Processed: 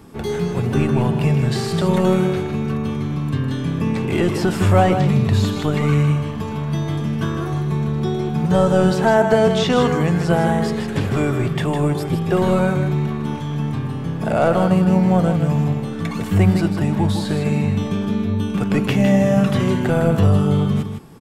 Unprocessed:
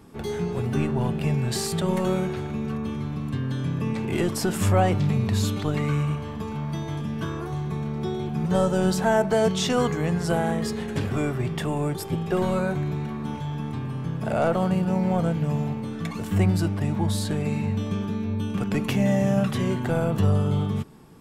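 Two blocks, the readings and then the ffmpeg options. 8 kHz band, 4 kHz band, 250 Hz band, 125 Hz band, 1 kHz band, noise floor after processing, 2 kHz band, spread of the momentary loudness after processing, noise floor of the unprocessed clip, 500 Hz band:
-0.5 dB, +4.5 dB, +7.0 dB, +6.5 dB, +6.5 dB, -26 dBFS, +6.5 dB, 8 LU, -33 dBFS, +7.0 dB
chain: -filter_complex "[0:a]acrossover=split=4300[s0][s1];[s1]acompressor=threshold=0.00631:ratio=4:attack=1:release=60[s2];[s0][s2]amix=inputs=2:normalize=0,aecho=1:1:157:0.422,volume=2"

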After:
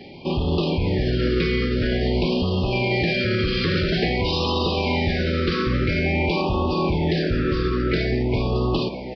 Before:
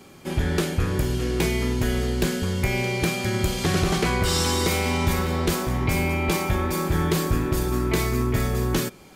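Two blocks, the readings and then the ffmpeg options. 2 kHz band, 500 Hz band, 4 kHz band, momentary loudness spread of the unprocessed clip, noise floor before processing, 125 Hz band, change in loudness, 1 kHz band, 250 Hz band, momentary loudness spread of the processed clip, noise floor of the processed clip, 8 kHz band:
+2.0 dB, +3.5 dB, +3.0 dB, 3 LU, -47 dBFS, +1.0 dB, +1.5 dB, +0.5 dB, +2.5 dB, 1 LU, -31 dBFS, under -20 dB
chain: -filter_complex "[0:a]asplit=2[s0][s1];[s1]aecho=0:1:933:0.0794[s2];[s0][s2]amix=inputs=2:normalize=0,alimiter=limit=0.1:level=0:latency=1:release=37,aresample=11025,aresample=44100,lowshelf=f=150:g=-3.5,asplit=2[s3][s4];[s4]asplit=7[s5][s6][s7][s8][s9][s10][s11];[s5]adelay=400,afreqshift=130,volume=0.188[s12];[s6]adelay=800,afreqshift=260,volume=0.116[s13];[s7]adelay=1200,afreqshift=390,volume=0.0724[s14];[s8]adelay=1600,afreqshift=520,volume=0.0447[s15];[s9]adelay=2000,afreqshift=650,volume=0.0279[s16];[s10]adelay=2400,afreqshift=780,volume=0.0172[s17];[s11]adelay=2800,afreqshift=910,volume=0.0107[s18];[s12][s13][s14][s15][s16][s17][s18]amix=inputs=7:normalize=0[s19];[s3][s19]amix=inputs=2:normalize=0,afftfilt=real='re*(1-between(b*sr/1024,770*pow(1800/770,0.5+0.5*sin(2*PI*0.49*pts/sr))/1.41,770*pow(1800/770,0.5+0.5*sin(2*PI*0.49*pts/sr))*1.41))':imag='im*(1-between(b*sr/1024,770*pow(1800/770,0.5+0.5*sin(2*PI*0.49*pts/sr))/1.41,770*pow(1800/770,0.5+0.5*sin(2*PI*0.49*pts/sr))*1.41))':win_size=1024:overlap=0.75,volume=2.51"

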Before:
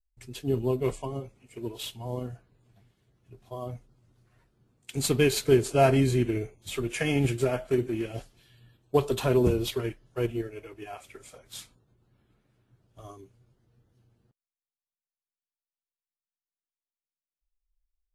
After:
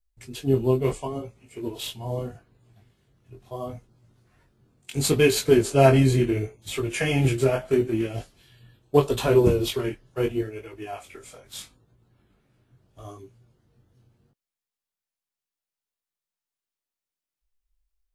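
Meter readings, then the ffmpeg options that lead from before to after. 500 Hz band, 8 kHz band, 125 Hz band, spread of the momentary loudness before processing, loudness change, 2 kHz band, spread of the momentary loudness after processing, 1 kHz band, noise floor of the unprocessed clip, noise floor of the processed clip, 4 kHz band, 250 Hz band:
+4.5 dB, +4.0 dB, +4.5 dB, 20 LU, +4.5 dB, +4.0 dB, 19 LU, +3.5 dB, under -85 dBFS, under -85 dBFS, +4.0 dB, +4.0 dB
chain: -af "flanger=delay=18:depth=5.1:speed=0.75,volume=2.24"

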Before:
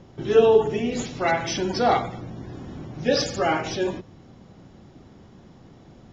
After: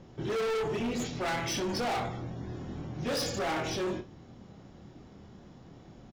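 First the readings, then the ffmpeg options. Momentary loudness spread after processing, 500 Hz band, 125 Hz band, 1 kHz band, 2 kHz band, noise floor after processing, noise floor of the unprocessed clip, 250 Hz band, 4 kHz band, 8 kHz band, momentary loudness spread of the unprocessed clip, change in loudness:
21 LU, -12.0 dB, -4.5 dB, -9.5 dB, -7.0 dB, -53 dBFS, -50 dBFS, -7.0 dB, -6.0 dB, no reading, 19 LU, -10.5 dB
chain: -af "aecho=1:1:25|61:0.473|0.178,volume=17.8,asoftclip=hard,volume=0.0562,volume=0.631"

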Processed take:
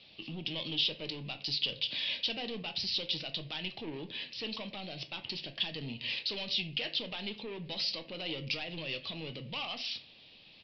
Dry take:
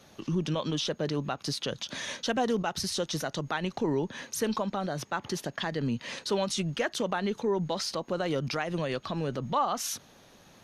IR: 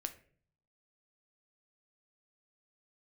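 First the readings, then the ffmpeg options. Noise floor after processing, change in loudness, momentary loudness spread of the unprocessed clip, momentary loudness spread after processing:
-57 dBFS, -4.0 dB, 5 LU, 9 LU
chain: -filter_complex "[0:a]aresample=11025,asoftclip=type=tanh:threshold=0.0398,aresample=44100,highshelf=f=2000:t=q:w=3:g=10.5[s0];[1:a]atrim=start_sample=2205,afade=t=out:st=0.33:d=0.01,atrim=end_sample=14994[s1];[s0][s1]afir=irnorm=-1:irlink=0,volume=0.447"

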